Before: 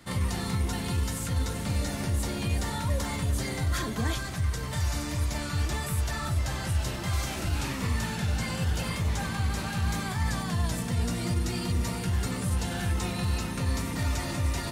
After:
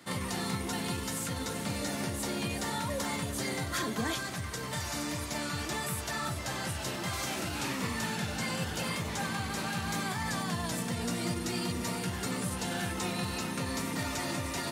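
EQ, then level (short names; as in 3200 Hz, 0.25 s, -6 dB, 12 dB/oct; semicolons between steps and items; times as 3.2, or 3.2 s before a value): HPF 180 Hz 12 dB/oct; 0.0 dB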